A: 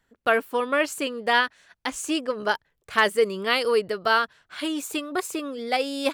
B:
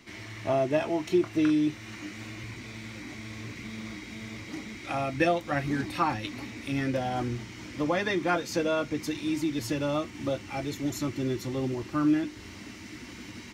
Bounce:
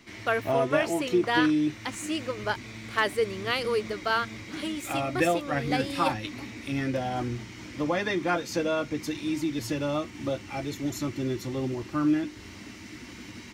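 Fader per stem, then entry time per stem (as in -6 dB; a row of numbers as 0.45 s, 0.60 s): -5.5 dB, 0.0 dB; 0.00 s, 0.00 s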